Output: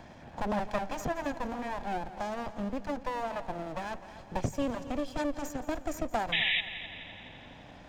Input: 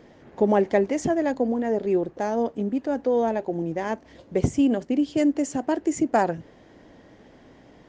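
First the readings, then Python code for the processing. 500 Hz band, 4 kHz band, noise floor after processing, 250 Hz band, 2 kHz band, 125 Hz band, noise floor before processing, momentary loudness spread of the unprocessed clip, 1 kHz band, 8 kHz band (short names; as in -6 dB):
-12.5 dB, +9.5 dB, -51 dBFS, -13.0 dB, +1.0 dB, -8.0 dB, -52 dBFS, 6 LU, -6.0 dB, -8.0 dB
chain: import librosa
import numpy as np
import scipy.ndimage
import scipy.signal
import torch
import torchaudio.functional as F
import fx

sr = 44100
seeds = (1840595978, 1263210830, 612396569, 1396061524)

p1 = fx.lower_of_two(x, sr, delay_ms=1.2)
p2 = fx.spec_paint(p1, sr, seeds[0], shape='noise', start_s=6.32, length_s=0.29, low_hz=1700.0, high_hz=3900.0, level_db=-19.0)
p3 = p2 + fx.echo_heads(p2, sr, ms=85, heads='second and third', feedback_pct=47, wet_db=-17, dry=0)
p4 = fx.band_squash(p3, sr, depth_pct=40)
y = F.gain(torch.from_numpy(p4), -6.0).numpy()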